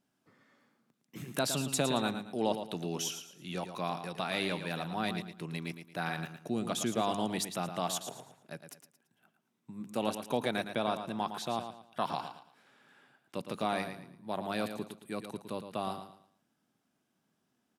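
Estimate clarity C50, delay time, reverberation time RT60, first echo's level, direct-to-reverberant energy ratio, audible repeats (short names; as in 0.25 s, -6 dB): none, 0.112 s, none, -9.0 dB, none, 3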